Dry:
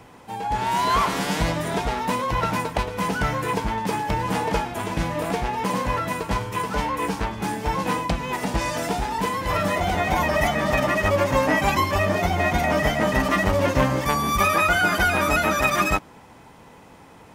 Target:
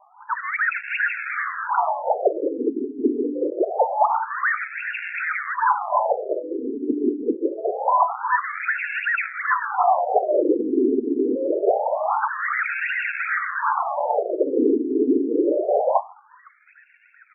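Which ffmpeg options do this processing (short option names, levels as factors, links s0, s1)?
-filter_complex "[0:a]bandreject=f=50:t=h:w=6,bandreject=f=100:t=h:w=6,bandreject=f=150:t=h:w=6,bandreject=f=200:t=h:w=6,bandreject=f=250:t=h:w=6,bandreject=f=300:t=h:w=6,afftdn=nr=27:nf=-40,adynamicequalizer=threshold=0.00398:dfrequency=8500:dqfactor=0.87:tfrequency=8500:tqfactor=0.87:attack=5:release=100:ratio=0.375:range=2.5:mode=boostabove:tftype=bell,aecho=1:1:1.1:0.75,asplit=2[s0][s1];[s1]alimiter=limit=0.158:level=0:latency=1:release=12,volume=1.41[s2];[s0][s2]amix=inputs=2:normalize=0,flanger=delay=18:depth=4.4:speed=0.39,acrusher=samples=31:mix=1:aa=0.000001:lfo=1:lforange=31:lforate=2.6,volume=6.31,asoftclip=hard,volume=0.158,acrusher=bits=8:mix=0:aa=0.000001,acrossover=split=5900[s3][s4];[s4]adelay=730[s5];[s3][s5]amix=inputs=2:normalize=0,afftfilt=real='re*between(b*sr/1024,310*pow(2000/310,0.5+0.5*sin(2*PI*0.25*pts/sr))/1.41,310*pow(2000/310,0.5+0.5*sin(2*PI*0.25*pts/sr))*1.41)':imag='im*between(b*sr/1024,310*pow(2000/310,0.5+0.5*sin(2*PI*0.25*pts/sr))/1.41,310*pow(2000/310,0.5+0.5*sin(2*PI*0.25*pts/sr))*1.41)':win_size=1024:overlap=0.75,volume=2.11"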